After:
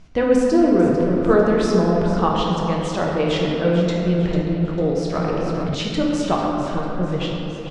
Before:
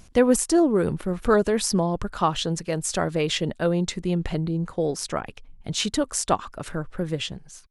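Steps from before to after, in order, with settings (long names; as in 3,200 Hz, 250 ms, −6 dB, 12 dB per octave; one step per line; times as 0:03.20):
high-frequency loss of the air 140 metres
on a send: repeating echo 447 ms, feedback 42%, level −11.5 dB
on the sum: rectangular room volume 140 cubic metres, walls hard, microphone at 0.57 metres
0:05.15–0:05.75: envelope flattener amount 70%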